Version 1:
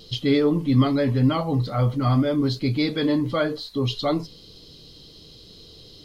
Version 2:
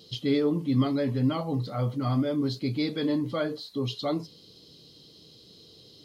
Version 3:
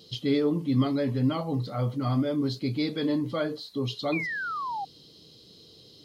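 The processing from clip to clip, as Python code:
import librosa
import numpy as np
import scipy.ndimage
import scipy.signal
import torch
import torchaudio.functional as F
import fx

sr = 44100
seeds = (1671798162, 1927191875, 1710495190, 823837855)

y1 = scipy.signal.sosfilt(scipy.signal.butter(2, 120.0, 'highpass', fs=sr, output='sos'), x)
y1 = fx.peak_eq(y1, sr, hz=1600.0, db=-3.5, octaves=2.3)
y1 = y1 * 10.0 ** (-4.5 / 20.0)
y2 = fx.spec_paint(y1, sr, seeds[0], shape='fall', start_s=4.12, length_s=0.73, low_hz=760.0, high_hz=2500.0, level_db=-32.0)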